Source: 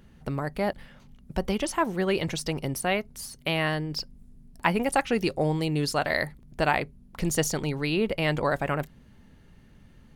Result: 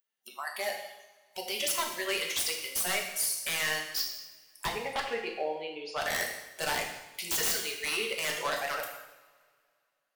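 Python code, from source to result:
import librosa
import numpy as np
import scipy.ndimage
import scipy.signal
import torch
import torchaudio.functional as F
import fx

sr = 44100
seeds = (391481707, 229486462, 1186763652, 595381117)

y = fx.lowpass(x, sr, hz=1700.0, slope=12, at=(4.66, 6.01))
y = fx.noise_reduce_blind(y, sr, reduce_db=27)
y = scipy.signal.sosfilt(scipy.signal.butter(2, 470.0, 'highpass', fs=sr, output='sos'), y)
y = fx.tilt_eq(y, sr, slope=4.0)
y = 10.0 ** (-21.5 / 20.0) * (np.abs((y / 10.0 ** (-21.5 / 20.0) + 3.0) % 4.0 - 2.0) - 1.0)
y = fx.rev_double_slope(y, sr, seeds[0], early_s=0.88, late_s=2.4, knee_db=-20, drr_db=0.0)
y = y * 10.0 ** (-4.0 / 20.0)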